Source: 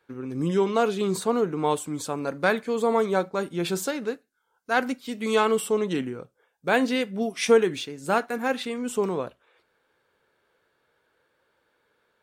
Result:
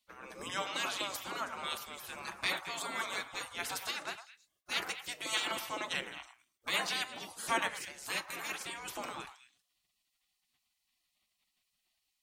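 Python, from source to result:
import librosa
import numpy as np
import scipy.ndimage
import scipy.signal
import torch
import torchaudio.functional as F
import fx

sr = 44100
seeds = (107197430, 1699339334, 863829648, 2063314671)

y = fx.spec_gate(x, sr, threshold_db=-20, keep='weak')
y = fx.echo_stepped(y, sr, ms=107, hz=1000.0, octaves=1.4, feedback_pct=70, wet_db=-8)
y = y * librosa.db_to_amplitude(2.5)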